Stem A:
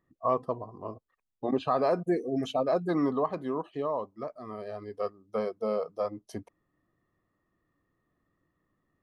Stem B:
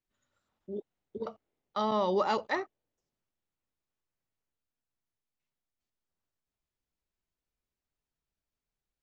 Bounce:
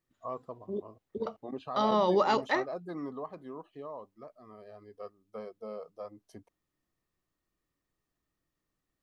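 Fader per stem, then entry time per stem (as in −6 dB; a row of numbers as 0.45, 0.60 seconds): −11.5, +2.5 decibels; 0.00, 0.00 seconds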